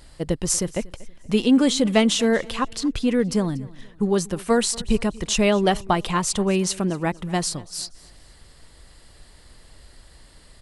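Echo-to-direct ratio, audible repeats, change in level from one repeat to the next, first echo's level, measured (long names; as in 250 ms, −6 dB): −21.0 dB, 2, −9.0 dB, −21.5 dB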